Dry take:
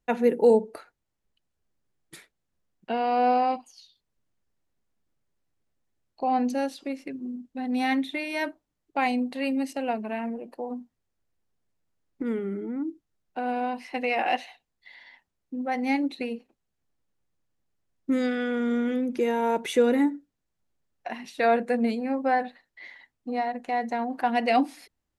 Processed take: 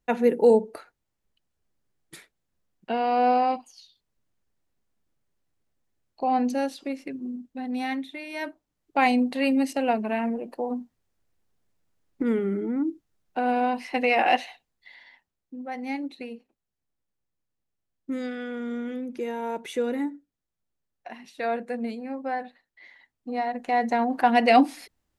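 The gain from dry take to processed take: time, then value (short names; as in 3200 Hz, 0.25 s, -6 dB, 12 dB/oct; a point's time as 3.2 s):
7.39 s +1 dB
8.15 s -7 dB
9.03 s +4.5 dB
14.4 s +4.5 dB
15.6 s -6 dB
22.87 s -6 dB
23.86 s +5 dB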